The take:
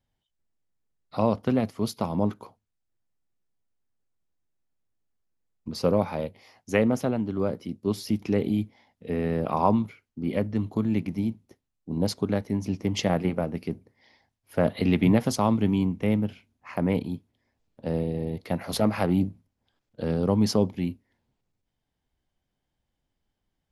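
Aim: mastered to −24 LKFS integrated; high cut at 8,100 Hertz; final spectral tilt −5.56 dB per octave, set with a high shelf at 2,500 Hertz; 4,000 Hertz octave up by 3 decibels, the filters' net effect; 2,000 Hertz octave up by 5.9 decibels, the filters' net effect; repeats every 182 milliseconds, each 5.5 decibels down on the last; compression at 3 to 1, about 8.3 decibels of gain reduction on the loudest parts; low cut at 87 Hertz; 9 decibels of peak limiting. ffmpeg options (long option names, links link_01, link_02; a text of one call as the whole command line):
ffmpeg -i in.wav -af "highpass=87,lowpass=8100,equalizer=frequency=2000:width_type=o:gain=7.5,highshelf=frequency=2500:gain=-4,equalizer=frequency=4000:width_type=o:gain=5.5,acompressor=threshold=-27dB:ratio=3,alimiter=limit=-21dB:level=0:latency=1,aecho=1:1:182|364|546|728|910|1092|1274:0.531|0.281|0.149|0.079|0.0419|0.0222|0.0118,volume=8.5dB" out.wav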